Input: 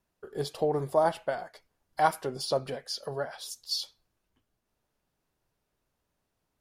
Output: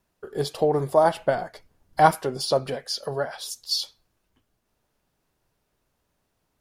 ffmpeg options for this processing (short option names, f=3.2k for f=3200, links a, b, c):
-filter_complex "[0:a]asettb=1/sr,asplit=3[a][b][c];[a]atrim=end=1.194[d];[b]atrim=start=1.19:end=2.15,asetpts=PTS-STARTPTS,afade=t=in:d=0.004:c=qsin,afade=t=out:st=0.956:d=0.004:c=qsin,lowshelf=f=350:g=9.5[e];[c]atrim=start=2.146[f];[d][e]acrossfade=d=0.004:c1=hsin:c2=qsin[g];[g][f]acrossfade=d=0.004:c1=qsin:c2=hsin,volume=6dB"